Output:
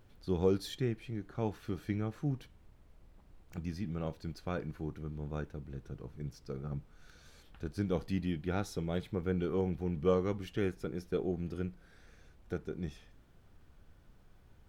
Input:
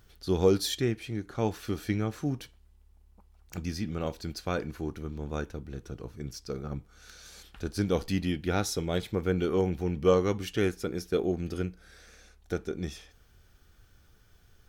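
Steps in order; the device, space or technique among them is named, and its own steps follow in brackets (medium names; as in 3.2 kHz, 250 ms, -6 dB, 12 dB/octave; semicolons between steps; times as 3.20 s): car interior (peaking EQ 150 Hz +6.5 dB 0.51 oct; treble shelf 3.6 kHz -8 dB; brown noise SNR 21 dB); peaking EQ 5.8 kHz -2.5 dB; trim -6.5 dB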